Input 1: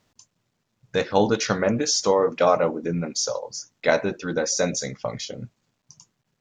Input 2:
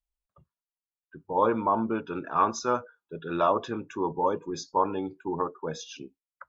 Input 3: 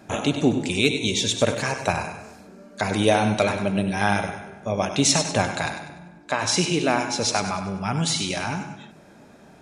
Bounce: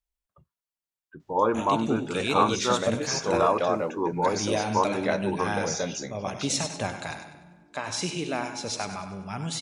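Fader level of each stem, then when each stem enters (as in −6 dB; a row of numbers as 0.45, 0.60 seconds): −7.5, +0.5, −8.5 decibels; 1.20, 0.00, 1.45 seconds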